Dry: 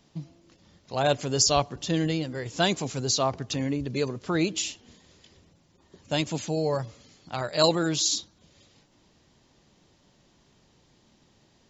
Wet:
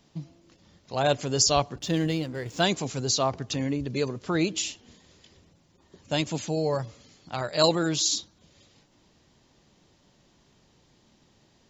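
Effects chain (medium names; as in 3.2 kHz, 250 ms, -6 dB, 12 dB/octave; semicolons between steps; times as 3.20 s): 1.78–2.62 s: hysteresis with a dead band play -44 dBFS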